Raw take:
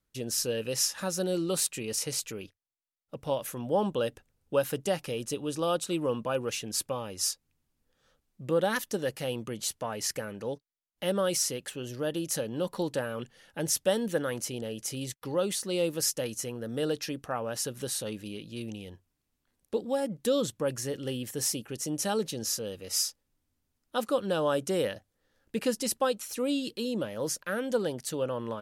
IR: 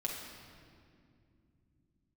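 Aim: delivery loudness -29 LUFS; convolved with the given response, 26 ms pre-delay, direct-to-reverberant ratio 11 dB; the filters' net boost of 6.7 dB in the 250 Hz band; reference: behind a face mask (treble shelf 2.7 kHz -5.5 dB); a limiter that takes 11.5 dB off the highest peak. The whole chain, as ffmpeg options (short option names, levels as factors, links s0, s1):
-filter_complex "[0:a]equalizer=f=250:t=o:g=8.5,alimiter=limit=0.0668:level=0:latency=1,asplit=2[s0][s1];[1:a]atrim=start_sample=2205,adelay=26[s2];[s1][s2]afir=irnorm=-1:irlink=0,volume=0.211[s3];[s0][s3]amix=inputs=2:normalize=0,highshelf=f=2700:g=-5.5,volume=1.68"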